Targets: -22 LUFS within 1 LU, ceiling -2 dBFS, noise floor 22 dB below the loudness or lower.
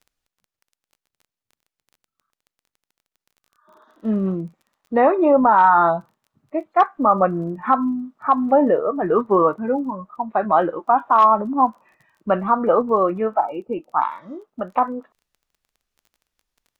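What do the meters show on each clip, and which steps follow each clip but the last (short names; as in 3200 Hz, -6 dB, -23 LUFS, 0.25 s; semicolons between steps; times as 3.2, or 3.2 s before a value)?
ticks 19/s; loudness -19.0 LUFS; peak -4.0 dBFS; loudness target -22.0 LUFS
-> de-click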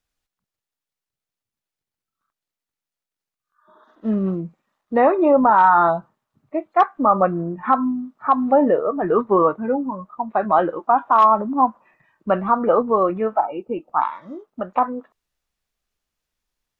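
ticks 0.060/s; loudness -19.0 LUFS; peak -4.0 dBFS; loudness target -22.0 LUFS
-> gain -3 dB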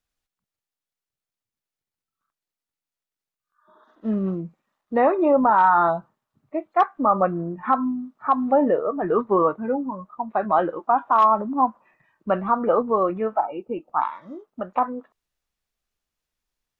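loudness -22.0 LUFS; peak -7.0 dBFS; noise floor -90 dBFS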